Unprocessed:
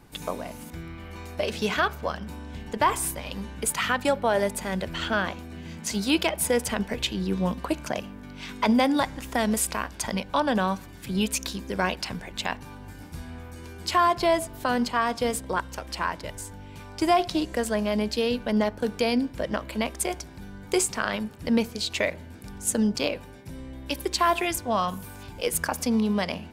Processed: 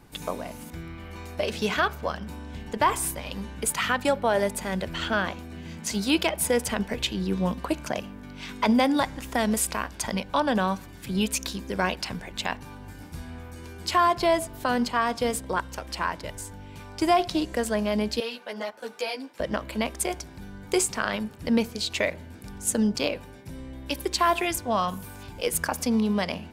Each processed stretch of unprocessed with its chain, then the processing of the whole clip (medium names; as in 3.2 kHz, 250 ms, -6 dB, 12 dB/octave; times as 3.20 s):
18.20–19.40 s: high-pass 540 Hz + three-phase chorus
whole clip: none